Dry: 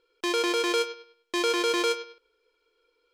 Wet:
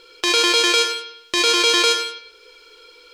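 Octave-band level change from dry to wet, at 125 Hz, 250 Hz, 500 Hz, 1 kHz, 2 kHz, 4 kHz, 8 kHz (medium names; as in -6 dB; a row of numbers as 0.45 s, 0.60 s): no reading, +3.0 dB, +3.5 dB, +7.5 dB, +10.5 dB, +14.5 dB, +14.0 dB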